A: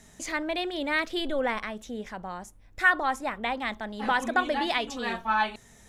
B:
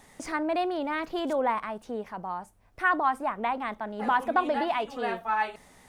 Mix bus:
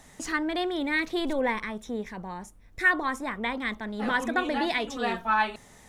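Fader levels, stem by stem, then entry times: -1.5, -0.5 dB; 0.00, 0.00 s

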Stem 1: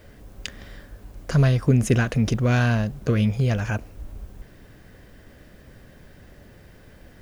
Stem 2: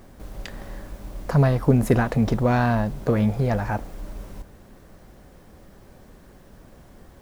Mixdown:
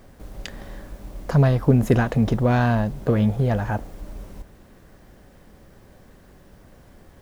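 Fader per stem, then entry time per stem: -8.5, -2.0 dB; 0.00, 0.00 s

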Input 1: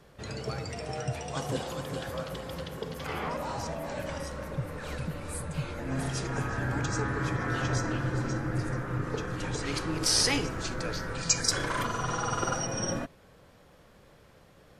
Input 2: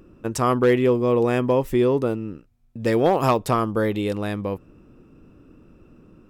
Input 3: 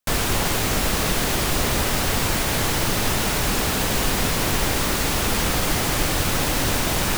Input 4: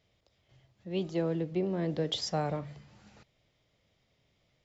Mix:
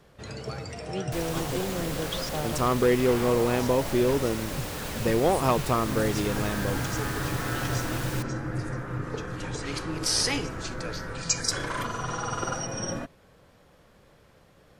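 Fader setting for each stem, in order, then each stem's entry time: -0.5, -4.5, -14.0, -1.5 dB; 0.00, 2.20, 1.05, 0.00 s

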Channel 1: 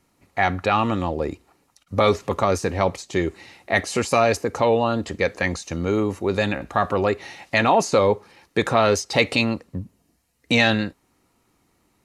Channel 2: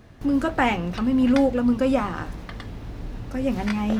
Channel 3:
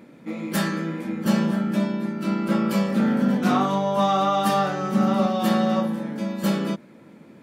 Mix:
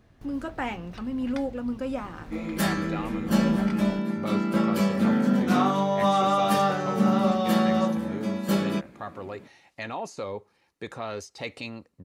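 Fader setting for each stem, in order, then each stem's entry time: -16.5, -10.0, -1.5 dB; 2.25, 0.00, 2.05 s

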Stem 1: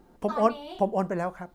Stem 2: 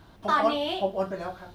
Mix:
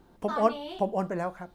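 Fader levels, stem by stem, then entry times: -2.0, -13.5 dB; 0.00, 0.00 s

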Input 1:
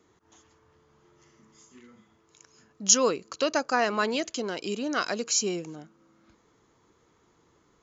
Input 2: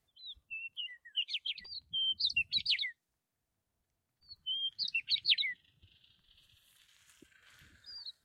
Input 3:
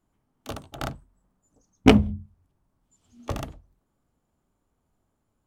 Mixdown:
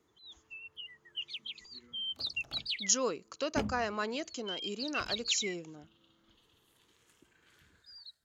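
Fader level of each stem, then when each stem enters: -8.5, -4.5, -19.5 dB; 0.00, 0.00, 1.70 s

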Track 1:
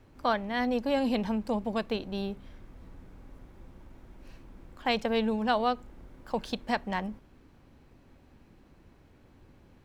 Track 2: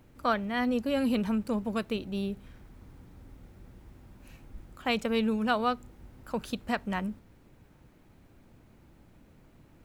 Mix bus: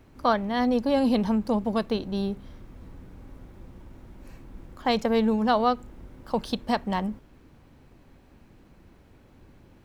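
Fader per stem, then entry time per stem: +2.5, -4.0 dB; 0.00, 0.00 s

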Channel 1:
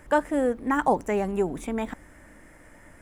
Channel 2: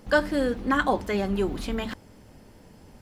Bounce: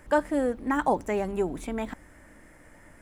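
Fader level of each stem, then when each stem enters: -2.0, -16.5 dB; 0.00, 0.00 s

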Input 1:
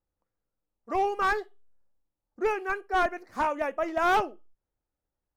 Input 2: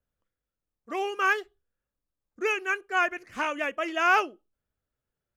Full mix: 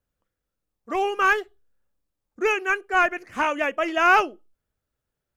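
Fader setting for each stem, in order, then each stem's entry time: -6.0, +3.0 dB; 0.00, 0.00 s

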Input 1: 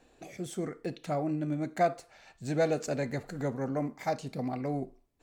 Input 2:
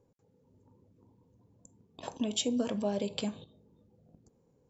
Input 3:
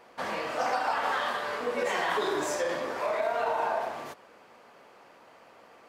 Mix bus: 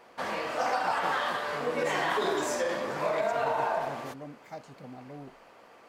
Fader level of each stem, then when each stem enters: -11.5, -15.0, 0.0 dB; 0.45, 0.00, 0.00 s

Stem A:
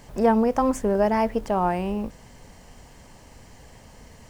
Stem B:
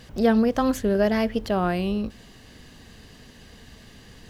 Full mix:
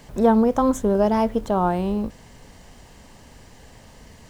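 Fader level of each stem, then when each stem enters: +0.5, -7.5 dB; 0.00, 0.00 s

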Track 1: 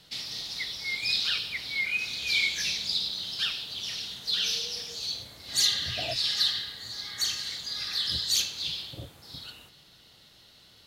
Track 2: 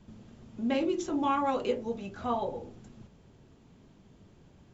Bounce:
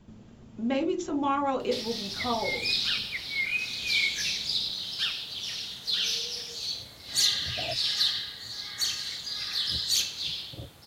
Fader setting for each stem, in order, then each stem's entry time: 0.0, +1.0 dB; 1.60, 0.00 s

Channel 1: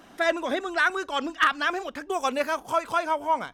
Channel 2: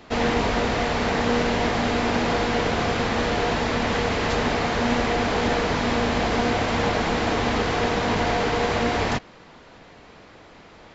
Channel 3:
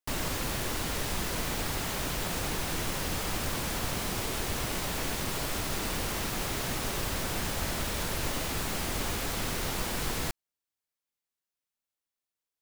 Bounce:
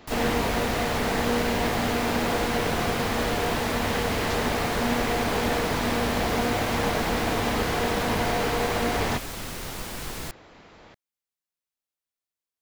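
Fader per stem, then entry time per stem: off, -3.0 dB, -2.5 dB; off, 0.00 s, 0.00 s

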